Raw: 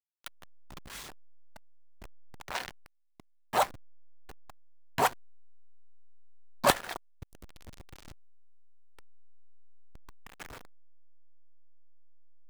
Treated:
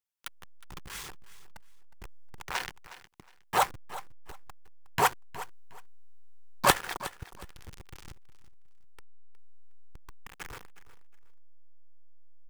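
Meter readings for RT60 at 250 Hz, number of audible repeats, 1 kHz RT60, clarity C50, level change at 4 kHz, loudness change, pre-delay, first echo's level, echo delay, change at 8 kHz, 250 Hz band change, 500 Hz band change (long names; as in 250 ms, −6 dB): no reverb audible, 2, no reverb audible, no reverb audible, +2.5 dB, +0.5 dB, no reverb audible, −16.0 dB, 363 ms, +3.5 dB, 0.0 dB, −1.5 dB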